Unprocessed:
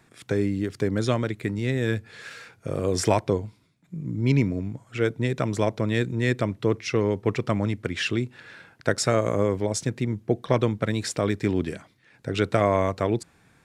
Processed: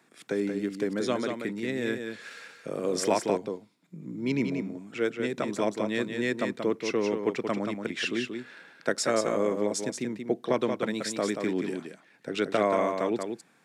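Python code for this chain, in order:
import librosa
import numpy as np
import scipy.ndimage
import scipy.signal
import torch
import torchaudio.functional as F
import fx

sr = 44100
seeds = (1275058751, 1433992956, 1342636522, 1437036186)

p1 = scipy.signal.sosfilt(scipy.signal.butter(4, 190.0, 'highpass', fs=sr, output='sos'), x)
p2 = p1 + fx.echo_single(p1, sr, ms=181, db=-6.0, dry=0)
y = F.gain(torch.from_numpy(p2), -3.5).numpy()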